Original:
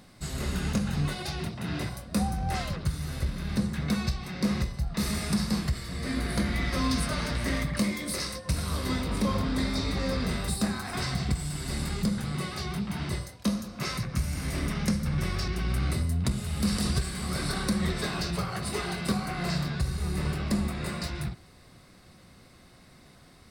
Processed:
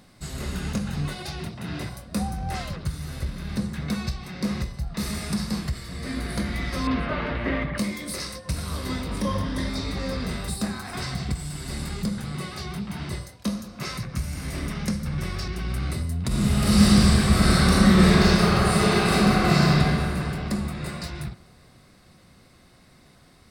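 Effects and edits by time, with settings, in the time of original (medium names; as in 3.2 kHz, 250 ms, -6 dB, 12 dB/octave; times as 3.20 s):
6.87–7.78 s: FFT filter 170 Hz 0 dB, 360 Hz +7 dB, 2.9 kHz +3 dB, 7.3 kHz -27 dB
9.21–9.69 s: rippled EQ curve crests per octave 1.2, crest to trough 7 dB
16.27–19.78 s: reverb throw, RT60 2.9 s, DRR -11.5 dB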